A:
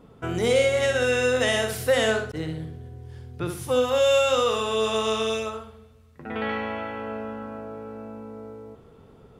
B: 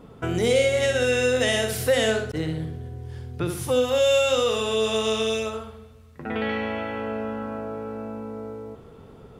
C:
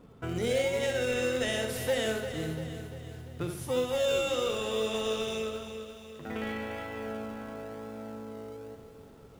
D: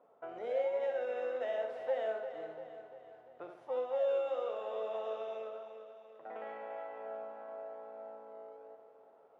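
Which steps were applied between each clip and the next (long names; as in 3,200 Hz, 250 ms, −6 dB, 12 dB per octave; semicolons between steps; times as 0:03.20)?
dynamic equaliser 1,100 Hz, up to −7 dB, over −39 dBFS, Q 1.3; in parallel at −3 dB: downward compressor, threshold −30 dBFS, peak gain reduction 12 dB
in parallel at −12 dB: sample-and-hold swept by an LFO 41×, swing 60% 0.98 Hz; on the sum: feedback echo at a low word length 345 ms, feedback 55%, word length 8 bits, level −10 dB; level −9 dB
four-pole ladder band-pass 750 Hz, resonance 55%; level +5 dB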